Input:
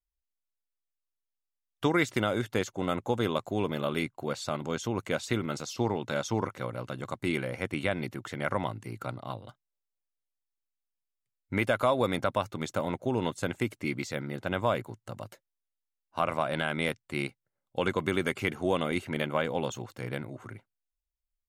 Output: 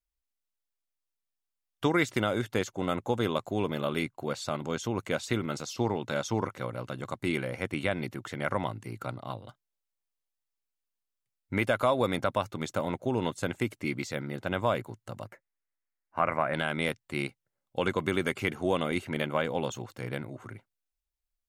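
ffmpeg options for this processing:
-filter_complex "[0:a]asplit=3[a][b][c];[a]afade=t=out:st=15.25:d=0.02[d];[b]highshelf=f=2.7k:t=q:w=3:g=-10,afade=t=in:st=15.25:d=0.02,afade=t=out:st=16.53:d=0.02[e];[c]afade=t=in:st=16.53:d=0.02[f];[d][e][f]amix=inputs=3:normalize=0"

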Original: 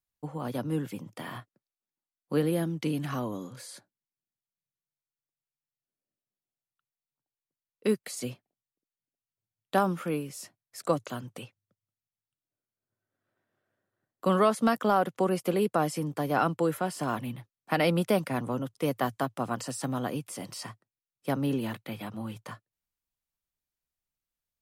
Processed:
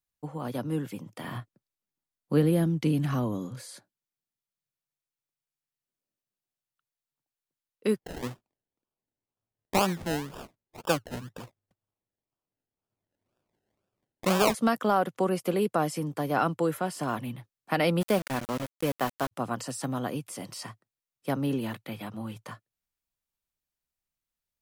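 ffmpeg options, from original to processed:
-filter_complex "[0:a]asettb=1/sr,asplit=3[a][b][c];[a]atrim=end=1.244[d];[b]atrim=start=1.24:end=3.62,asetpts=PTS-STARTPTS,afade=t=in:d=0.004:c=qsin,afade=t=out:st=2.376:d=0.004:c=qsin,lowshelf=f=220:g=10[e];[c]atrim=start=3.616[f];[d][e]acrossfade=d=0.004:c1=hsin:c2=qsin[g];[g][f]acrossfade=d=0.004:c1=qsin:c2=hsin,asplit=3[h][i][j];[h]afade=t=out:st=7.95:d=0.02[k];[i]acrusher=samples=30:mix=1:aa=0.000001:lfo=1:lforange=18:lforate=2,afade=t=in:st=7.95:d=0.02,afade=t=out:st=14.53:d=0.02[l];[j]afade=t=in:st=14.53:d=0.02[m];[k][l][m]amix=inputs=3:normalize=0,asplit=3[n][o][p];[n]afade=t=out:st=18:d=0.02[q];[o]aeval=exprs='val(0)*gte(abs(val(0)),0.0266)':c=same,afade=t=in:st=18:d=0.02,afade=t=out:st=19.31:d=0.02[r];[p]afade=t=in:st=19.31:d=0.02[s];[q][r][s]amix=inputs=3:normalize=0"

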